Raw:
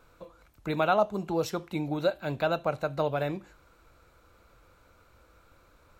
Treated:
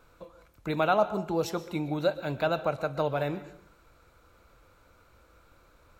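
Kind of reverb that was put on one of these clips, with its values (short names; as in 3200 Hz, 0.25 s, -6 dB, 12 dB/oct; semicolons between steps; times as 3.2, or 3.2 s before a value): plate-style reverb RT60 0.62 s, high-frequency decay 0.8×, pre-delay 0.11 s, DRR 14 dB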